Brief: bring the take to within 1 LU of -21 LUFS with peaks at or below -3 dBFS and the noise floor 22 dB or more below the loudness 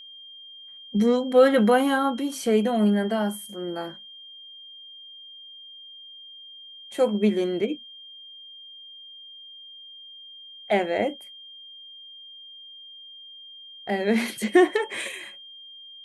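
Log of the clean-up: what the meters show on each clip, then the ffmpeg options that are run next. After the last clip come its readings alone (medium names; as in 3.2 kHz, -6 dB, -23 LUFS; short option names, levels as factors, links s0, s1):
steady tone 3.2 kHz; tone level -42 dBFS; loudness -23.5 LUFS; peak level -6.5 dBFS; loudness target -21.0 LUFS
-> -af "bandreject=f=3200:w=30"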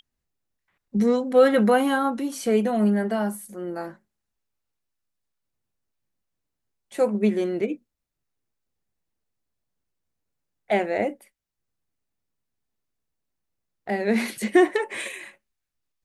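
steady tone not found; loudness -23.0 LUFS; peak level -6.5 dBFS; loudness target -21.0 LUFS
-> -af "volume=1.26"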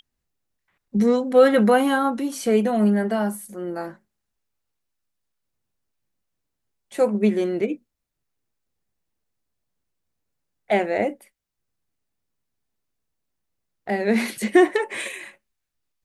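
loudness -21.0 LUFS; peak level -4.5 dBFS; noise floor -80 dBFS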